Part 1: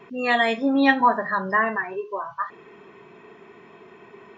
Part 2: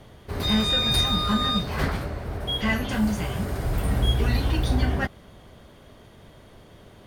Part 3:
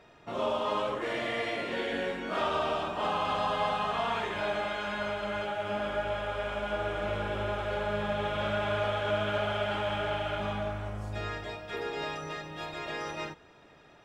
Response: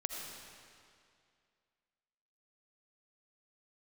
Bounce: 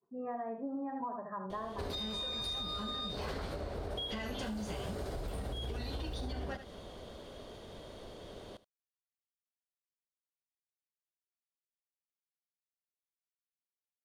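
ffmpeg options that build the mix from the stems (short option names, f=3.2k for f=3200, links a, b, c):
-filter_complex "[0:a]lowpass=f=1.1k:w=0.5412,lowpass=f=1.1k:w=1.3066,agate=range=-33dB:threshold=-36dB:ratio=3:detection=peak,volume=-12dB,asplit=2[a][b];[b]volume=-8dB[c];[1:a]equalizer=f=125:t=o:w=1:g=-6,equalizer=f=500:t=o:w=1:g=6,equalizer=f=2k:t=o:w=1:g=-4,equalizer=f=4k:t=o:w=1:g=7,equalizer=f=8k:t=o:w=1:g=5,alimiter=limit=-16dB:level=0:latency=1:release=34,adelay=1500,volume=-1dB,asplit=2[d][e];[e]volume=-19dB[f];[a][d]amix=inputs=2:normalize=0,highshelf=f=6.2k:g=-7.5,acompressor=threshold=-28dB:ratio=6,volume=0dB[g];[c][f]amix=inputs=2:normalize=0,aecho=0:1:75:1[h];[g][h]amix=inputs=2:normalize=0,acompressor=threshold=-36dB:ratio=6"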